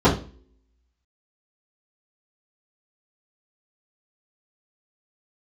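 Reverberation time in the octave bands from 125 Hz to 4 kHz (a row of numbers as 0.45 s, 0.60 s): 0.40 s, 0.60 s, 0.45 s, 0.35 s, 0.35 s, 0.35 s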